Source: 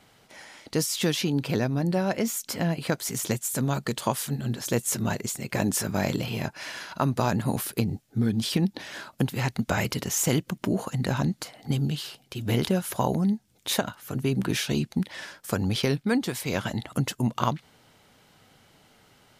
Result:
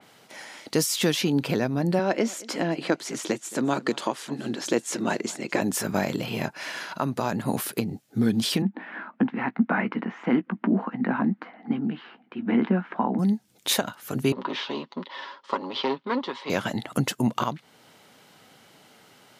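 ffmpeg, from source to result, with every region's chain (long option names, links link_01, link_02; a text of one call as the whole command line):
ffmpeg -i in.wav -filter_complex "[0:a]asettb=1/sr,asplit=3[link_01][link_02][link_03];[link_01]atrim=end=1.994[link_04];[link_02]atrim=start=1.99:end=5.61,asetpts=PTS-STARTPTS,afade=type=in:duration=0.004:curve=qsin,afade=type=out:start_time=3.616:duration=0.004:curve=qsin,highpass=220,lowpass=6600,equalizer=frequency=320:width=4.3:gain=7.5,aecho=1:1:219:0.0794,atrim=end_sample=159642[link_05];[link_03]atrim=start=5.606[link_06];[link_04][link_05]acrossfade=duration=0.004:curve1=hsin:curve2=qsin[link_07];[link_07][link_06]acrossfade=duration=0.004:curve1=qsin:curve2=hsin,asettb=1/sr,asplit=3[link_08][link_09][link_10];[link_08]atrim=end=8.624[link_11];[link_09]atrim=start=8.62:end=13.19,asetpts=PTS-STARTPTS,afade=type=in:duration=0.004:curve=qsin,afade=type=out:start_time=4.566:duration=0.004:curve=qsin,highpass=frequency=210:width=0.5412,highpass=frequency=210:width=1.3066,equalizer=frequency=220:width_type=q:width=4:gain=9,equalizer=frequency=400:width_type=q:width=4:gain=-6,equalizer=frequency=570:width_type=q:width=4:gain=-9,lowpass=frequency=2000:width=0.5412,lowpass=frequency=2000:width=1.3066,asplit=2[link_12][link_13];[link_13]adelay=16,volume=-12dB[link_14];[link_12][link_14]amix=inputs=2:normalize=0,atrim=end_sample=201537[link_15];[link_10]atrim=start=13.186[link_16];[link_11][link_15]acrossfade=duration=0.004:curve1=hsin:curve2=qsin[link_17];[link_17][link_16]acrossfade=duration=0.004:curve1=qsin:curve2=hsin,asettb=1/sr,asplit=3[link_18][link_19][link_20];[link_18]atrim=end=14.324[link_21];[link_19]atrim=start=14.32:end=16.5,asetpts=PTS-STARTPTS,afade=type=in:duration=0.004:curve=qsin,afade=type=out:start_time=2.176:duration=0.004:curve=qsin,aecho=1:1:7.3:0.47,atrim=end_sample=96138,aeval=exprs='clip(val(0),-1,0.0501)':channel_layout=same,highpass=frequency=270:width=0.5412,highpass=frequency=270:width=1.3066,equalizer=frequency=300:width_type=q:width=4:gain=-7,equalizer=frequency=440:width_type=q:width=4:gain=-4,equalizer=frequency=690:width_type=q:width=4:gain=-9,equalizer=frequency=1000:width_type=q:width=4:gain=10,equalizer=frequency=1600:width_type=q:width=4:gain=-8,equalizer=frequency=2400:width_type=q:width=4:gain=-9,lowpass=frequency=3700:width=0.5412,lowpass=frequency=3700:width=1.3066[link_22];[link_20]atrim=start=16.496[link_23];[link_21][link_22]acrossfade=duration=0.004:curve1=hsin:curve2=qsin[link_24];[link_24][link_23]acrossfade=duration=0.004:curve1=qsin:curve2=hsin,highpass=170,alimiter=limit=-15.5dB:level=0:latency=1:release=411,adynamicequalizer=threshold=0.00447:dfrequency=3200:dqfactor=0.7:tfrequency=3200:tqfactor=0.7:attack=5:release=100:ratio=0.375:range=2:mode=cutabove:tftype=highshelf,volume=4.5dB" out.wav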